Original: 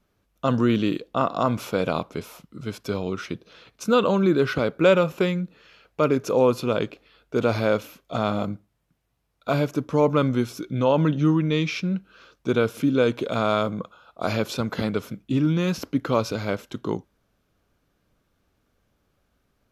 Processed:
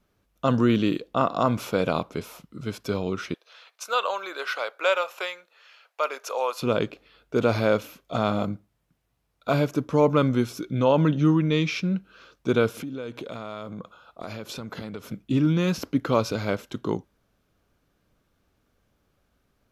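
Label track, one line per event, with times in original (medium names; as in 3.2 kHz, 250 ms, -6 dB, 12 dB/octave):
3.340000	6.620000	high-pass 650 Hz 24 dB/octave
12.800000	15.120000	compression 4:1, threshold -33 dBFS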